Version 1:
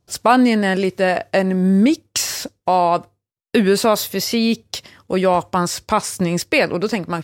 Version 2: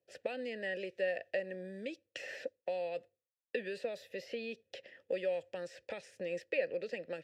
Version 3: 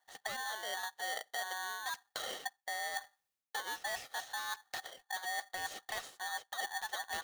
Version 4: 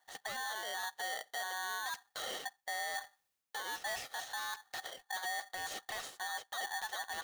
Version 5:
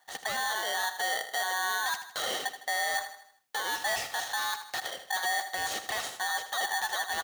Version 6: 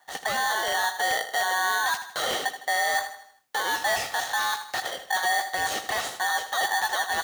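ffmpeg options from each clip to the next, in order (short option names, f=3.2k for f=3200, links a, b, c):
-filter_complex "[0:a]acrossover=split=160|2600[a][b][c];[a]acompressor=threshold=-35dB:ratio=4[d];[b]acompressor=threshold=-28dB:ratio=4[e];[c]acompressor=threshold=-33dB:ratio=4[f];[d][e][f]amix=inputs=3:normalize=0,asplit=3[g][h][i];[g]bandpass=f=530:t=q:w=8,volume=0dB[j];[h]bandpass=f=1.84k:t=q:w=8,volume=-6dB[k];[i]bandpass=f=2.48k:t=q:w=8,volume=-9dB[l];[j][k][l]amix=inputs=3:normalize=0"
-af "areverse,acompressor=threshold=-45dB:ratio=12,areverse,aeval=exprs='val(0)*sgn(sin(2*PI*1300*n/s))':c=same,volume=8.5dB"
-af "alimiter=level_in=12.5dB:limit=-24dB:level=0:latency=1:release=16,volume=-12.5dB,volume=4dB"
-filter_complex "[0:a]highpass=48,asplit=2[a][b];[b]aecho=0:1:79|158|237|316|395:0.282|0.132|0.0623|0.0293|0.0138[c];[a][c]amix=inputs=2:normalize=0,volume=8.5dB"
-filter_complex "[0:a]acrossover=split=710|2000[a][b][c];[a]aeval=exprs='(mod(39.8*val(0)+1,2)-1)/39.8':c=same[d];[c]flanger=delay=17.5:depth=5.8:speed=1.6[e];[d][b][e]amix=inputs=3:normalize=0,volume=6.5dB"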